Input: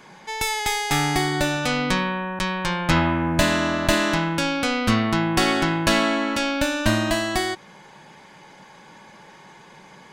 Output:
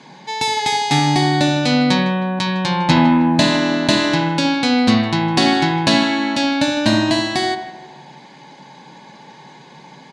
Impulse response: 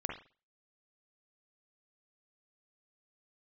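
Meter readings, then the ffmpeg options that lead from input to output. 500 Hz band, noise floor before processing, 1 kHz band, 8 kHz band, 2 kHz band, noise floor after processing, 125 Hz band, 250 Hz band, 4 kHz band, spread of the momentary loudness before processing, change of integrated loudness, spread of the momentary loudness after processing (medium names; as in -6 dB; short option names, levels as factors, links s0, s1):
+3.5 dB, -48 dBFS, +5.5 dB, +1.0 dB, +2.0 dB, -43 dBFS, +5.5 dB, +7.5 dB, +6.5 dB, 5 LU, +5.5 dB, 6 LU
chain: -filter_complex "[0:a]highpass=140,equalizer=f=140:t=q:w=4:g=10,equalizer=f=260:t=q:w=4:g=9,equalizer=f=870:t=q:w=4:g=5,equalizer=f=1300:t=q:w=4:g=-9,equalizer=f=4100:t=q:w=4:g=9,equalizer=f=8300:t=q:w=4:g=-4,lowpass=f=9000:w=0.5412,lowpass=f=9000:w=1.3066,asplit=2[s0][s1];[s1]adelay=156,lowpass=f=2900:p=1,volume=0.188,asplit=2[s2][s3];[s3]adelay=156,lowpass=f=2900:p=1,volume=0.49,asplit=2[s4][s5];[s5]adelay=156,lowpass=f=2900:p=1,volume=0.49,asplit=2[s6][s7];[s7]adelay=156,lowpass=f=2900:p=1,volume=0.49,asplit=2[s8][s9];[s9]adelay=156,lowpass=f=2900:p=1,volume=0.49[s10];[s0][s2][s4][s6][s8][s10]amix=inputs=6:normalize=0,asplit=2[s11][s12];[1:a]atrim=start_sample=2205,asetrate=29106,aresample=44100[s13];[s12][s13]afir=irnorm=-1:irlink=0,volume=0.531[s14];[s11][s14]amix=inputs=2:normalize=0,volume=0.841"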